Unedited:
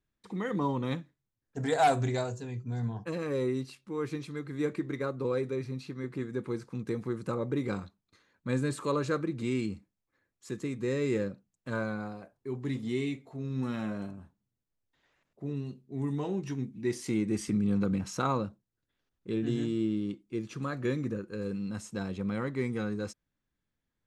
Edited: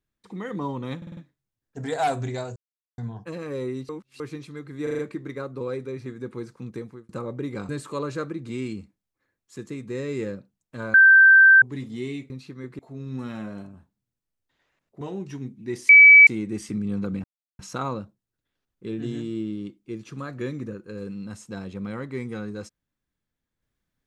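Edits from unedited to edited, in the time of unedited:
0.97 s: stutter 0.05 s, 5 plays
2.36–2.78 s: mute
3.69–4.00 s: reverse
4.63 s: stutter 0.04 s, 5 plays
5.70–6.19 s: move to 13.23 s
6.86–7.22 s: fade out
7.82–8.62 s: delete
11.87–12.55 s: bleep 1.56 kHz -9 dBFS
15.45–16.18 s: delete
17.06 s: add tone 2.29 kHz -6.5 dBFS 0.38 s
18.03 s: insert silence 0.35 s

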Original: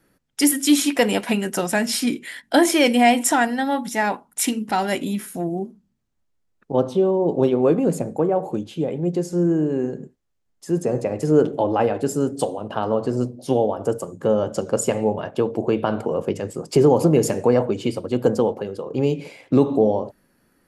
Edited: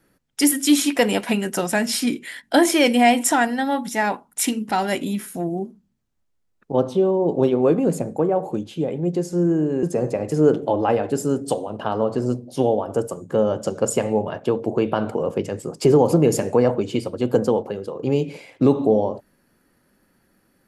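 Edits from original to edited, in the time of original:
9.83–10.74 s: delete

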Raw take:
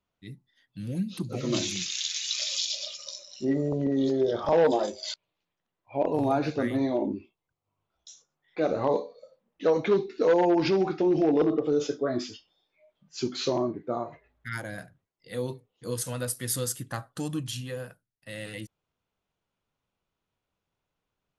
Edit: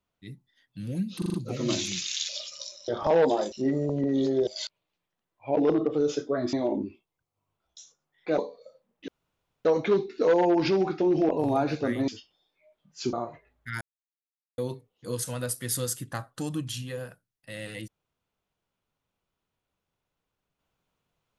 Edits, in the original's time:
1.18 s: stutter 0.04 s, 5 plays
2.13–2.76 s: delete
4.30–4.94 s: move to 3.35 s
6.04–6.83 s: swap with 11.29–12.25 s
8.68–8.95 s: delete
9.65 s: insert room tone 0.57 s
13.30–13.92 s: delete
14.60–15.37 s: mute

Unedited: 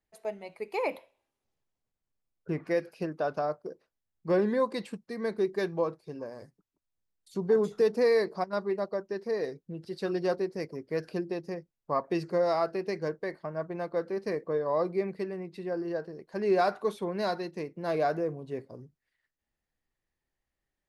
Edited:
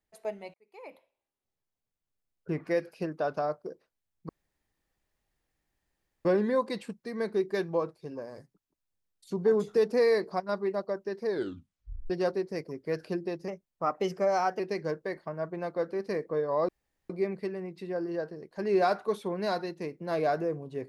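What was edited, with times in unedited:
0.54–2.53 s: fade in
4.29 s: insert room tone 1.96 s
9.30 s: tape stop 0.84 s
11.52–12.77 s: speed 112%
14.86 s: insert room tone 0.41 s

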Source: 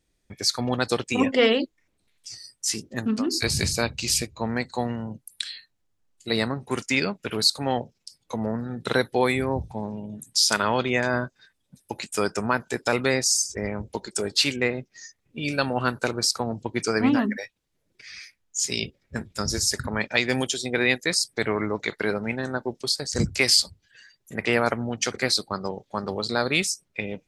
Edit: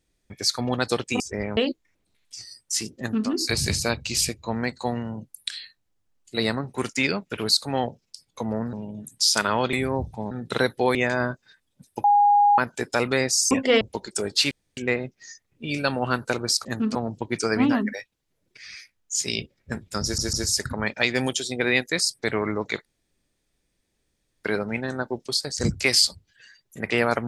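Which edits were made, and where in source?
1.20–1.50 s: swap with 13.44–13.81 s
2.91–3.21 s: copy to 16.39 s
8.66–9.30 s: swap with 9.88–10.88 s
11.97–12.51 s: bleep 820 Hz -13.5 dBFS
14.51 s: insert room tone 0.26 s
19.47 s: stutter 0.15 s, 3 plays
21.99 s: insert room tone 1.59 s

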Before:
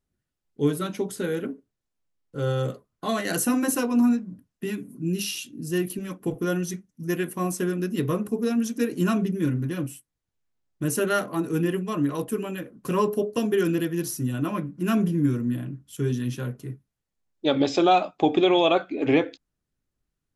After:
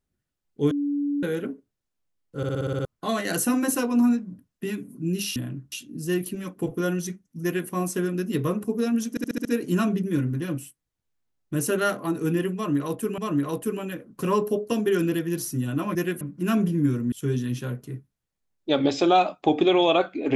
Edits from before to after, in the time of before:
0.71–1.23 s: bleep 287 Hz -22.5 dBFS
2.37 s: stutter in place 0.06 s, 8 plays
7.07–7.33 s: copy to 14.61 s
8.74 s: stutter 0.07 s, 6 plays
11.84–12.47 s: loop, 2 plays
15.52–15.88 s: move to 5.36 s

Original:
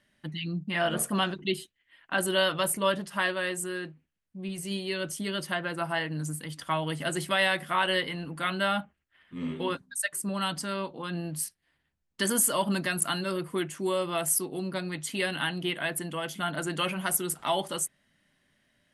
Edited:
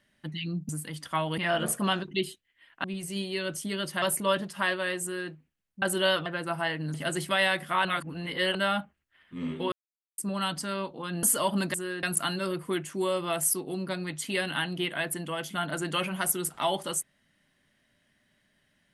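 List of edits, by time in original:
2.15–2.59 s: swap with 4.39–5.57 s
3.59–3.88 s: copy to 12.88 s
6.25–6.94 s: move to 0.69 s
7.85–8.55 s: reverse
9.72–10.18 s: mute
11.23–12.37 s: delete

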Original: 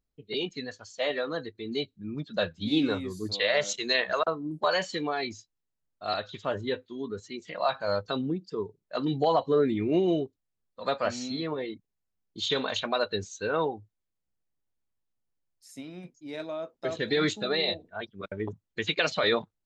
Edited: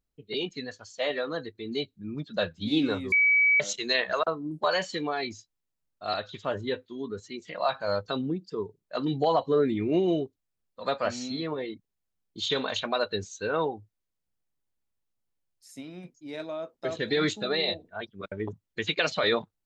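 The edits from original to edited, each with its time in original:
3.12–3.60 s: bleep 2.28 kHz -18 dBFS

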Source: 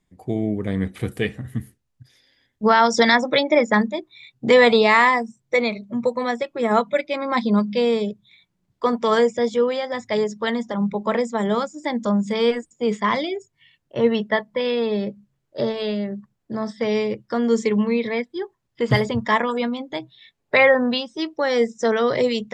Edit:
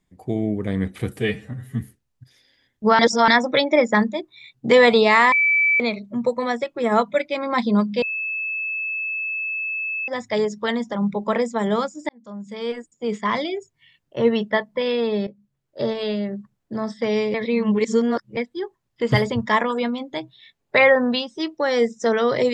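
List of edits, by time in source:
1.17–1.59 s: stretch 1.5×
2.78–3.07 s: reverse
5.11–5.59 s: bleep 2.31 kHz -14.5 dBFS
7.81–9.87 s: bleep 2.61 kHz -23.5 dBFS
11.88–13.37 s: fade in
15.06–15.71 s: fade in, from -14 dB
17.13–18.16 s: reverse

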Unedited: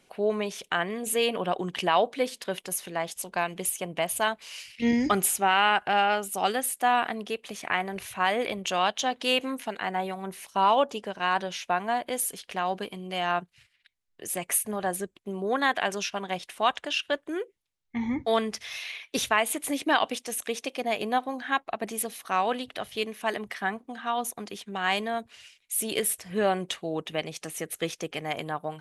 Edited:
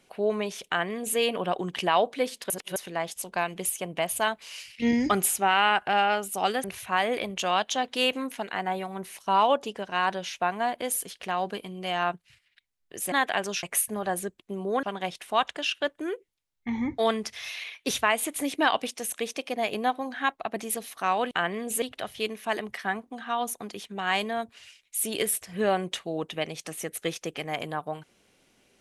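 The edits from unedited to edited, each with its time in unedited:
0.67–1.18 s: copy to 22.59 s
2.50–2.76 s: reverse
6.64–7.92 s: delete
15.60–16.11 s: move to 14.40 s

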